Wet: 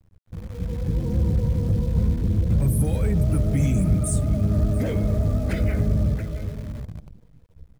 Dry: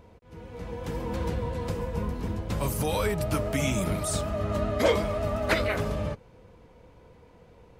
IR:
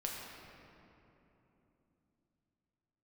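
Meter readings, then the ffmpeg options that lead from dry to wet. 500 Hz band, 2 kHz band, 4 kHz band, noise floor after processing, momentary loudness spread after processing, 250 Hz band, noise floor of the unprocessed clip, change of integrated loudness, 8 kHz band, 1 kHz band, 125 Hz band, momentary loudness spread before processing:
-3.5 dB, -8.0 dB, no reading, -57 dBFS, 13 LU, +7.0 dB, -55 dBFS, +6.0 dB, +1.0 dB, -9.5 dB, +11.0 dB, 10 LU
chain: -filter_complex "[0:a]aecho=1:1:675:0.224,asoftclip=type=hard:threshold=0.112,acrossover=split=370|3000[s0][s1][s2];[s1]acompressor=threshold=0.0141:ratio=1.5[s3];[s0][s3][s2]amix=inputs=3:normalize=0,asplit=2[s4][s5];[1:a]atrim=start_sample=2205,lowshelf=f=110:g=-3[s6];[s5][s6]afir=irnorm=-1:irlink=0,volume=0.562[s7];[s4][s7]amix=inputs=2:normalize=0,afftdn=nr=21:nf=-34,asoftclip=type=tanh:threshold=0.0891,equalizer=f=1000:t=o:w=0.67:g=-10,equalizer=f=4000:t=o:w=0.67:g=-10,equalizer=f=10000:t=o:w=0.67:g=10,acrusher=bits=8:dc=4:mix=0:aa=0.000001,bass=f=250:g=13,treble=f=4000:g=-1,bandreject=f=2800:w=20,volume=0.794"

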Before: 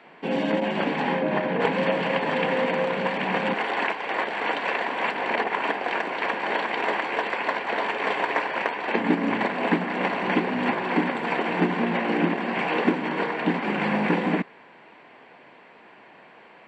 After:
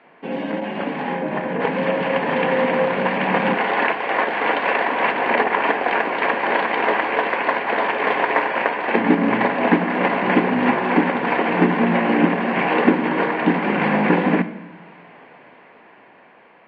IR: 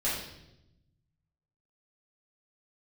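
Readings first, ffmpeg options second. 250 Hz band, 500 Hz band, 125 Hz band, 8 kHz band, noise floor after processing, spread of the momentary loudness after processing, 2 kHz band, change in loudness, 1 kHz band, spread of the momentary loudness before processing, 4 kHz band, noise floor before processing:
+6.0 dB, +5.5 dB, +5.5 dB, no reading, -49 dBFS, 6 LU, +5.5 dB, +5.5 dB, +6.0 dB, 3 LU, +2.0 dB, -50 dBFS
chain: -filter_complex "[0:a]lowpass=2700,dynaudnorm=f=450:g=9:m=3.76,asplit=2[s0][s1];[1:a]atrim=start_sample=2205[s2];[s1][s2]afir=irnorm=-1:irlink=0,volume=0.126[s3];[s0][s3]amix=inputs=2:normalize=0,volume=0.841"

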